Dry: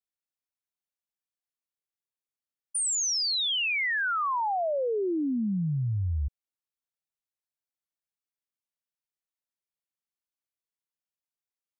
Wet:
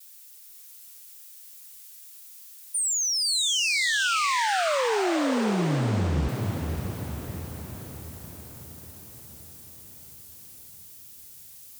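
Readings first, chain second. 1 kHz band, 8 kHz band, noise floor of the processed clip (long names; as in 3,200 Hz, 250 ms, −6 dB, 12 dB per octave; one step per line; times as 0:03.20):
+3.5 dB, +4.0 dB, −48 dBFS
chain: spike at every zero crossing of −42.5 dBFS
feedback delay with all-pass diffusion 517 ms, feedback 60%, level −4.5 dB
pitch vibrato 0.94 Hz 39 cents
level +1.5 dB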